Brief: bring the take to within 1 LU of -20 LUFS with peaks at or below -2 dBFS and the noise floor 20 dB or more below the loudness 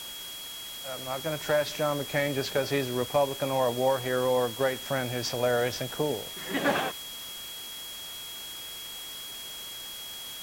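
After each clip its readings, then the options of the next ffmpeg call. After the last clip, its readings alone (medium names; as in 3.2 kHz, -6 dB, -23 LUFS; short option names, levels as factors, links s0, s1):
steady tone 3.3 kHz; tone level -40 dBFS; noise floor -40 dBFS; noise floor target -50 dBFS; loudness -30.0 LUFS; peak level -14.0 dBFS; loudness target -20.0 LUFS
-> -af "bandreject=f=3300:w=30"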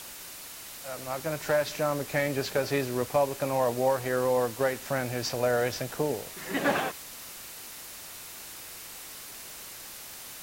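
steady tone not found; noise floor -44 dBFS; noise floor target -51 dBFS
-> -af "afftdn=nr=7:nf=-44"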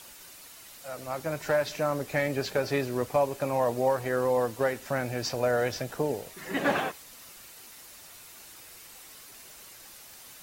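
noise floor -49 dBFS; loudness -29.0 LUFS; peak level -14.5 dBFS; loudness target -20.0 LUFS
-> -af "volume=2.82"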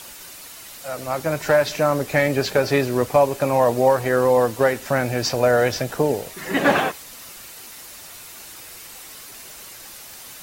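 loudness -20.0 LUFS; peak level -5.5 dBFS; noise floor -40 dBFS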